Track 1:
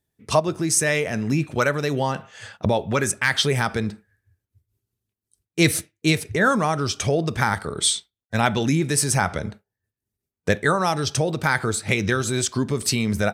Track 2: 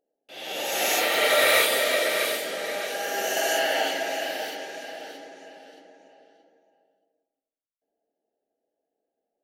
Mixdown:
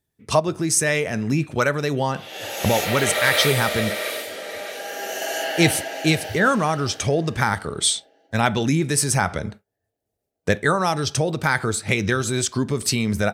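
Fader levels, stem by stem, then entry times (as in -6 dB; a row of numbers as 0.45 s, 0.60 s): +0.5 dB, -2.0 dB; 0.00 s, 1.85 s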